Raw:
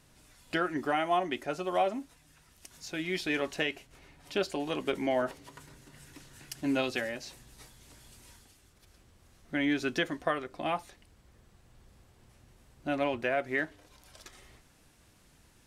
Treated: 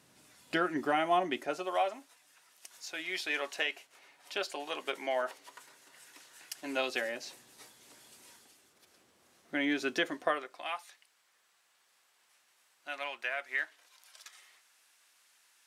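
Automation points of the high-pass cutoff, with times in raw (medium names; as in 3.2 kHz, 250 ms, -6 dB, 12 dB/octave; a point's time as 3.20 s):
1.34 s 170 Hz
1.80 s 640 Hz
6.55 s 640 Hz
7.14 s 300 Hz
10.26 s 300 Hz
10.69 s 1.2 kHz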